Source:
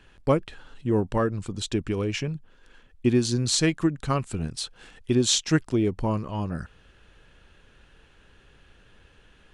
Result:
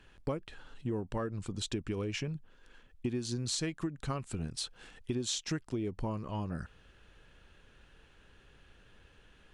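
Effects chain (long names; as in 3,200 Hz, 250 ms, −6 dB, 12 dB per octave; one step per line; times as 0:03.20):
downward compressor 6 to 1, threshold −27 dBFS, peak gain reduction 11.5 dB
level −4.5 dB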